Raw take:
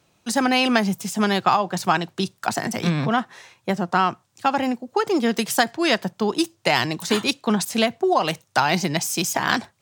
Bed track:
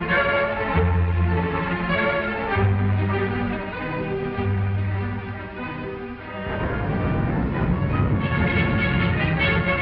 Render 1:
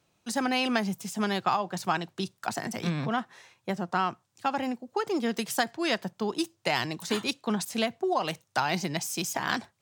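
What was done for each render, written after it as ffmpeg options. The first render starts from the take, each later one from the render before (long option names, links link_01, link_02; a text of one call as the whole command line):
ffmpeg -i in.wav -af "volume=-8dB" out.wav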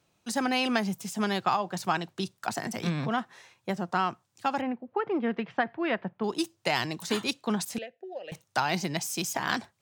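ffmpeg -i in.wav -filter_complex "[0:a]asettb=1/sr,asplit=3[link_01][link_02][link_03];[link_01]atrim=end=4.614[link_04];[link_02]atrim=start=4.61:end=6.24,asetpts=PTS-STARTPTS,afade=type=in:duration=0.004:curve=qsin,afade=type=out:start_time=1.626:duration=0.004:curve=qsin,lowpass=frequency=2500:width=0.5412,lowpass=frequency=2500:width=1.3066[link_05];[link_03]atrim=start=6.236[link_06];[link_04][link_05]acrossfade=duration=0.004:curve1=hsin:curve2=qsin[link_07];[link_07][link_06]acrossfade=duration=0.004:curve1=qsin:curve2=hsin,asettb=1/sr,asplit=3[link_08][link_09][link_10];[link_08]atrim=end=7.784[link_11];[link_09]atrim=start=7.78:end=8.32,asetpts=PTS-STARTPTS,afade=type=in:duration=0.004:curve=qsin,afade=type=out:start_time=0.536:duration=0.004:curve=qsin,asplit=3[link_12][link_13][link_14];[link_12]bandpass=frequency=530:width_type=q:width=8,volume=0dB[link_15];[link_13]bandpass=frequency=1840:width_type=q:width=8,volume=-6dB[link_16];[link_14]bandpass=frequency=2480:width_type=q:width=8,volume=-9dB[link_17];[link_15][link_16][link_17]amix=inputs=3:normalize=0[link_18];[link_10]atrim=start=8.316[link_19];[link_11][link_18]acrossfade=duration=0.004:curve1=hsin:curve2=qsin[link_20];[link_20][link_19]acrossfade=duration=0.004:curve1=qsin:curve2=hsin" out.wav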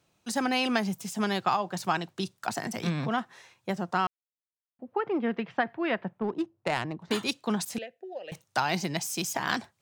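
ffmpeg -i in.wav -filter_complex "[0:a]asettb=1/sr,asplit=3[link_01][link_02][link_03];[link_01]atrim=end=6.194[link_04];[link_02]atrim=start=6.19:end=7.11,asetpts=PTS-STARTPTS,afade=type=in:duration=0.004:curve=qsin,afade=type=out:start_time=0.916:duration=0.004:curve=qsin,adynamicsmooth=sensitivity=1:basefreq=960[link_05];[link_03]atrim=start=7.106[link_06];[link_04][link_05]acrossfade=duration=0.004:curve1=hsin:curve2=qsin[link_07];[link_07][link_06]acrossfade=duration=0.004:curve1=qsin:curve2=hsin,asplit=3[link_08][link_09][link_10];[link_08]atrim=end=4.07,asetpts=PTS-STARTPTS,afade=type=out:start_time=4.066:duration=0.004:curve=hsin[link_11];[link_09]atrim=start=4.07:end=4.79,asetpts=PTS-STARTPTS,volume=0[link_12];[link_10]atrim=start=4.79,asetpts=PTS-STARTPTS,afade=type=in:duration=0.004:curve=hsin[link_13];[link_11][link_12][link_13]concat=n=3:v=0:a=1" out.wav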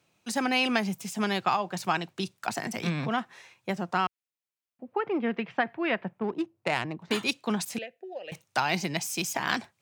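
ffmpeg -i in.wav -af "highpass=89,equalizer=frequency=2400:width=2.7:gain=5" out.wav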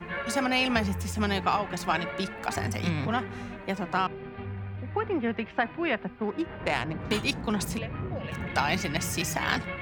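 ffmpeg -i in.wav -i bed.wav -filter_complex "[1:a]volume=-14dB[link_01];[0:a][link_01]amix=inputs=2:normalize=0" out.wav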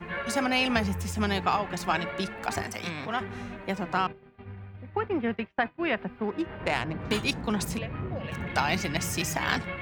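ffmpeg -i in.wav -filter_complex "[0:a]asettb=1/sr,asplit=3[link_01][link_02][link_03];[link_01]atrim=end=2.624[link_04];[link_02]atrim=start=2.62:end=3.21,asetpts=PTS-STARTPTS,afade=type=in:duration=0.004:curve=qsin,afade=type=out:start_time=0.586:duration=0.004:curve=qsin,highpass=frequency=480:poles=1[link_05];[link_03]atrim=start=3.206[link_06];[link_04][link_05]acrossfade=duration=0.004:curve1=hsin:curve2=qsin[link_07];[link_07][link_06]acrossfade=duration=0.004:curve1=qsin:curve2=hsin,asplit=3[link_08][link_09][link_10];[link_08]afade=type=out:start_time=4.11:duration=0.02[link_11];[link_09]agate=range=-33dB:threshold=-31dB:ratio=3:release=100:detection=peak,afade=type=in:start_time=4.11:duration=0.02,afade=type=out:start_time=5.82:duration=0.02[link_12];[link_10]afade=type=in:start_time=5.82:duration=0.02[link_13];[link_11][link_12][link_13]amix=inputs=3:normalize=0" out.wav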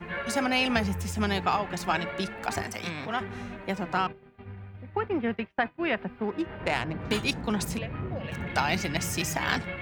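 ffmpeg -i in.wav -af "bandreject=frequency=1100:width=25" out.wav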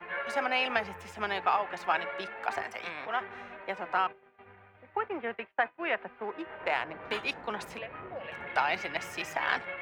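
ffmpeg -i in.wav -filter_complex "[0:a]acrossover=split=430 3100:gain=0.0891 1 0.141[link_01][link_02][link_03];[link_01][link_02][link_03]amix=inputs=3:normalize=0" out.wav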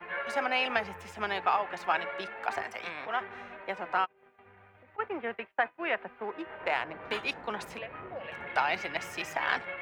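ffmpeg -i in.wav -filter_complex "[0:a]asplit=3[link_01][link_02][link_03];[link_01]afade=type=out:start_time=4.04:duration=0.02[link_04];[link_02]acompressor=threshold=-52dB:ratio=12:attack=3.2:release=140:knee=1:detection=peak,afade=type=in:start_time=4.04:duration=0.02,afade=type=out:start_time=4.98:duration=0.02[link_05];[link_03]afade=type=in:start_time=4.98:duration=0.02[link_06];[link_04][link_05][link_06]amix=inputs=3:normalize=0" out.wav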